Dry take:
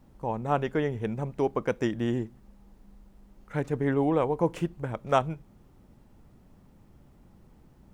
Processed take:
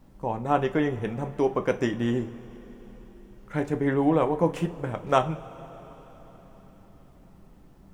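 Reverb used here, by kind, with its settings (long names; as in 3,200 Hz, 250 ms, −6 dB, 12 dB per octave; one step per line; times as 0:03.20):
coupled-rooms reverb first 0.24 s, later 4.7 s, from −22 dB, DRR 6 dB
level +2 dB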